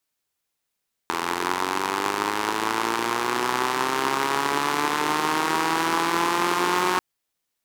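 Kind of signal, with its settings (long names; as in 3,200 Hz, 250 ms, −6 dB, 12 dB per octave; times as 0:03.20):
pulse-train model of a four-cylinder engine, changing speed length 5.89 s, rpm 2,500, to 5,500, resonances 370/950 Hz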